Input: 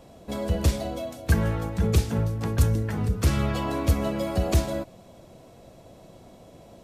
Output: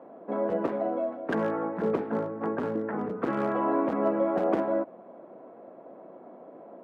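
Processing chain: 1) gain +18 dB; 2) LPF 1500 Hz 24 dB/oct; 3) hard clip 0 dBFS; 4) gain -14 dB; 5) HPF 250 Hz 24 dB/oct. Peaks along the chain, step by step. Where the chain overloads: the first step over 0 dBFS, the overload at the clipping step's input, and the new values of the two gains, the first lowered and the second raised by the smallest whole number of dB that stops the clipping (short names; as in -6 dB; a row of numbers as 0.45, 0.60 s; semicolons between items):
+9.0, +8.5, 0.0, -14.0, -13.5 dBFS; step 1, 8.5 dB; step 1 +9 dB, step 4 -5 dB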